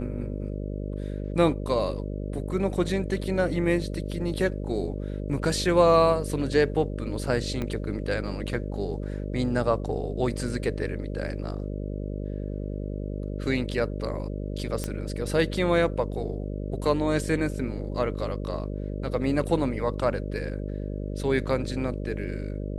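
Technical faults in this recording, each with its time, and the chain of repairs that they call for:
buzz 50 Hz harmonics 12 -32 dBFS
7.62 pop -18 dBFS
14.84 pop -15 dBFS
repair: de-click; de-hum 50 Hz, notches 12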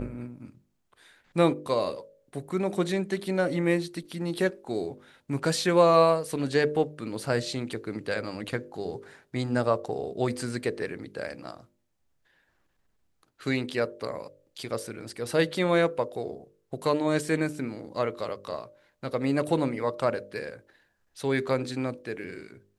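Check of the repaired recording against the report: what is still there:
7.62 pop

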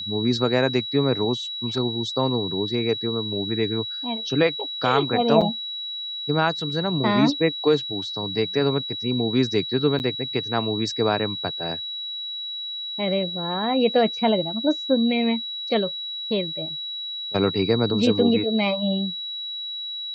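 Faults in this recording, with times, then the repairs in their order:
tone 3900 Hz -29 dBFS
5.41–5.42 gap 6 ms
9.99–10 gap 9.6 ms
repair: notch 3900 Hz, Q 30; interpolate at 5.41, 6 ms; interpolate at 9.99, 9.6 ms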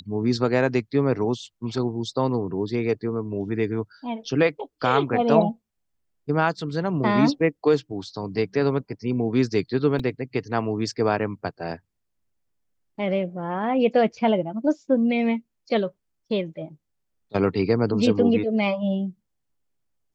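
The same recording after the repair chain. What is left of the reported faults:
none

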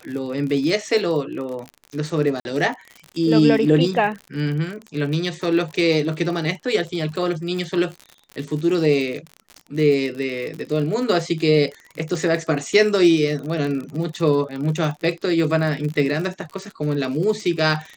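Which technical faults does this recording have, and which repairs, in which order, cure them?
crackle 49/s -28 dBFS
2.4–2.45 gap 51 ms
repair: de-click; interpolate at 2.4, 51 ms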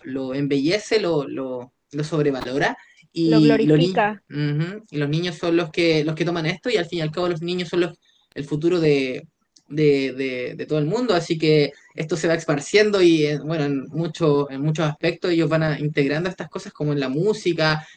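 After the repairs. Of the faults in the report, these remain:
none

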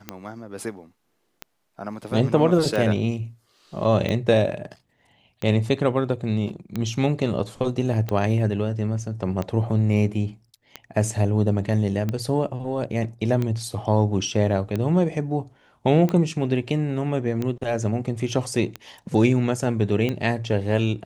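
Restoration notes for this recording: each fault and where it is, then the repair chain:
tick 45 rpm -14 dBFS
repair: de-click

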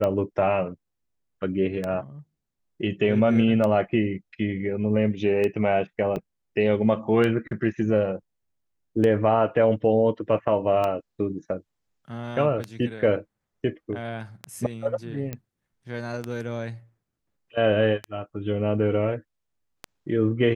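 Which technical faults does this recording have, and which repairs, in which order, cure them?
tick 33 1/3 rpm -15 dBFS
6.16 gap 3.8 ms
15.33 pop -18 dBFS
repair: de-click; interpolate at 6.16, 3.8 ms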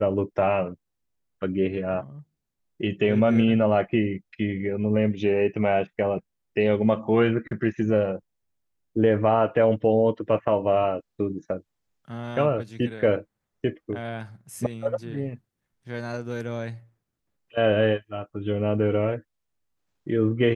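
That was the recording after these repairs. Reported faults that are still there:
15.33 pop

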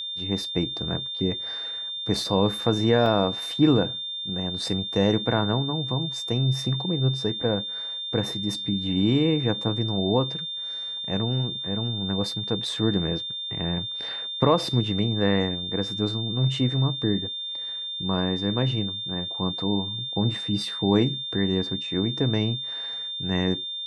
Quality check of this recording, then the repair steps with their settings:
tone 3600 Hz -30 dBFS
3.06 gap 2.2 ms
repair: notch 3600 Hz, Q 30; interpolate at 3.06, 2.2 ms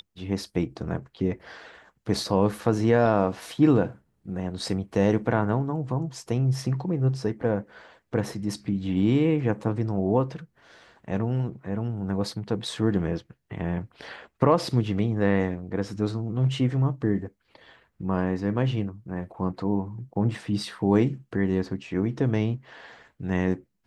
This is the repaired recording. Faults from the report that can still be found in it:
none

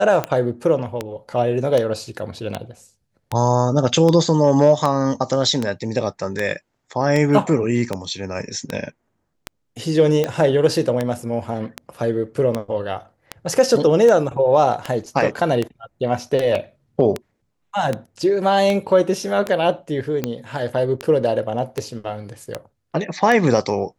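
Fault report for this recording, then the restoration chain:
tick 78 rpm -8 dBFS
16.55 gap 4.2 ms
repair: de-click; interpolate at 16.55, 4.2 ms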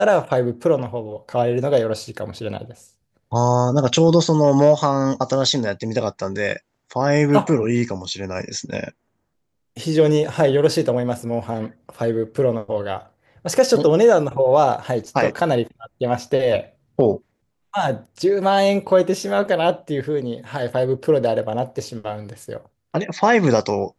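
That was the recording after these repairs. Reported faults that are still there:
none

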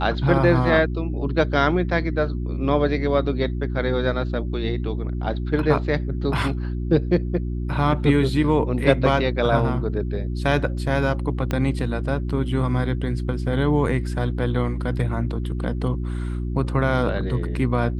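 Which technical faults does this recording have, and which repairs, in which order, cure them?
hum 60 Hz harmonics 6 -26 dBFS
11.51 pop -11 dBFS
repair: de-click; de-hum 60 Hz, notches 6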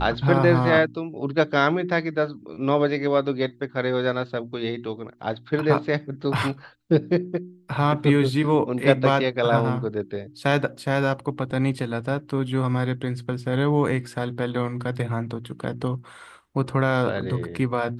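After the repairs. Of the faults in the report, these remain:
11.51 pop

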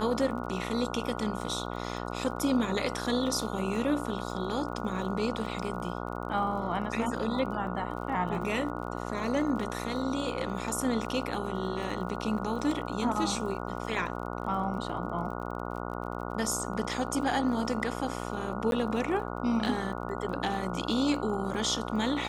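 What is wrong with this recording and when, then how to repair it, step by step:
buzz 60 Hz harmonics 24 -36 dBFS
crackle 35/s -40 dBFS
18.71–18.72 gap 12 ms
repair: de-click; de-hum 60 Hz, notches 24; interpolate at 18.71, 12 ms

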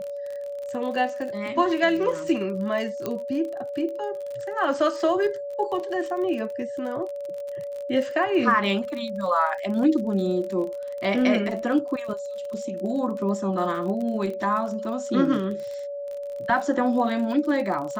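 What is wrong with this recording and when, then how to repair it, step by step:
crackle 39/s -32 dBFS
tone 570 Hz -30 dBFS
3.06 pop -14 dBFS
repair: de-click; notch 570 Hz, Q 30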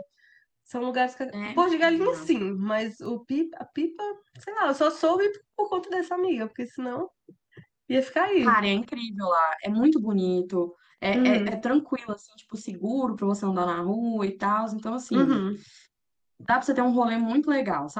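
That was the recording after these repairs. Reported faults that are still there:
3.06 pop

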